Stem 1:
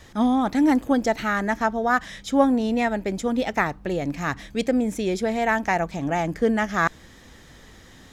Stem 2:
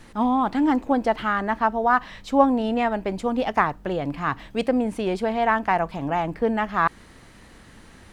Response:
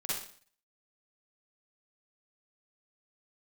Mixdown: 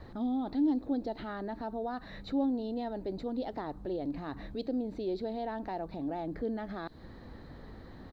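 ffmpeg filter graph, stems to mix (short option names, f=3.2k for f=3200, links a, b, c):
-filter_complex "[0:a]lowpass=1.1k,acompressor=threshold=-29dB:ratio=6,alimiter=level_in=8.5dB:limit=-24dB:level=0:latency=1,volume=-8.5dB,volume=1dB[a];[1:a]firequalizer=gain_entry='entry(150,0);entry(290,6);entry(510,-9);entry(1800,-29);entry(4000,10);entry(5700,-9);entry(9000,-27)':delay=0.05:min_phase=1,acrusher=bits=10:mix=0:aa=0.000001,volume=-1,adelay=1,volume=-13.5dB[b];[a][b]amix=inputs=2:normalize=0"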